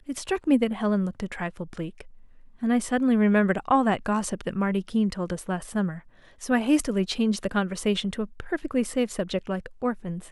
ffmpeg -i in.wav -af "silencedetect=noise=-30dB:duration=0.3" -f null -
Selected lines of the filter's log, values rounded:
silence_start: 2.01
silence_end: 2.63 | silence_duration: 0.62
silence_start: 5.94
silence_end: 6.43 | silence_duration: 0.49